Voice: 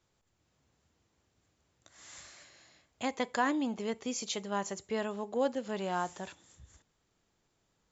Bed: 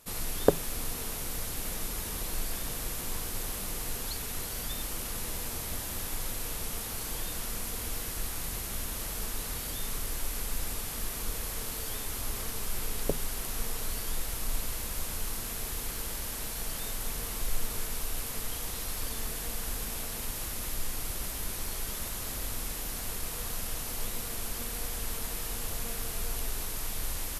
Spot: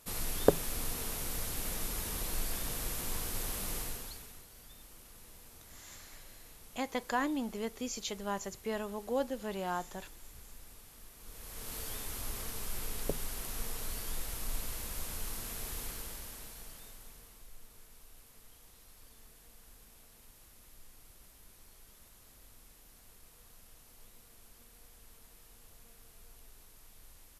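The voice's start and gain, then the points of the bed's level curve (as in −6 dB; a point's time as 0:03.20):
3.75 s, −2.5 dB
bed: 0:03.78 −2 dB
0:04.46 −19 dB
0:11.17 −19 dB
0:11.75 −5 dB
0:15.83 −5 dB
0:17.50 −22.5 dB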